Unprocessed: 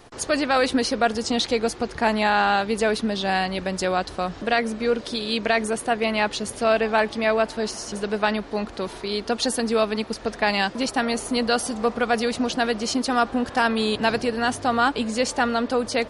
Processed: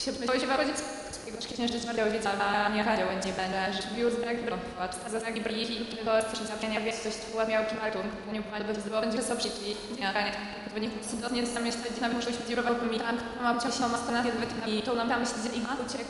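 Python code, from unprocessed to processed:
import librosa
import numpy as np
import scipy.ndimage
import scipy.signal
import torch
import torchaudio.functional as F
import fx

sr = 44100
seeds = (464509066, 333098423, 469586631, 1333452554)

y = fx.block_reorder(x, sr, ms=141.0, group=7)
y = fx.auto_swell(y, sr, attack_ms=102.0)
y = fx.rev_schroeder(y, sr, rt60_s=2.1, comb_ms=26, drr_db=4.0)
y = y * 10.0 ** (-7.5 / 20.0)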